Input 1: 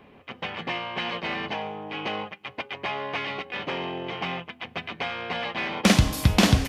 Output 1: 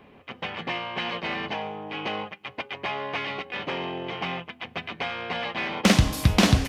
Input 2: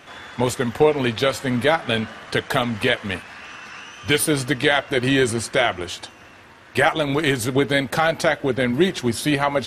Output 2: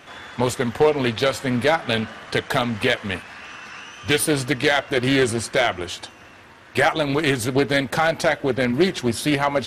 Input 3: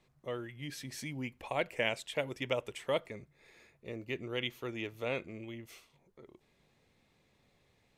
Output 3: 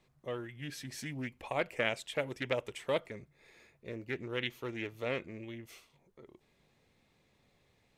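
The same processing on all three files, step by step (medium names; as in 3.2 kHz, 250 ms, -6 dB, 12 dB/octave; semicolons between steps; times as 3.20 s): hard clipper -8.5 dBFS; loudspeaker Doppler distortion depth 0.19 ms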